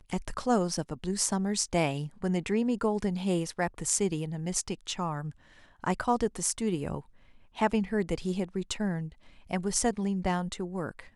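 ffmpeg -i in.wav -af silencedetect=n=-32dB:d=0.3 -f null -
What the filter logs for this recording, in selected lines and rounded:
silence_start: 5.29
silence_end: 5.84 | silence_duration: 0.55
silence_start: 6.99
silence_end: 7.59 | silence_duration: 0.60
silence_start: 9.06
silence_end: 9.51 | silence_duration: 0.45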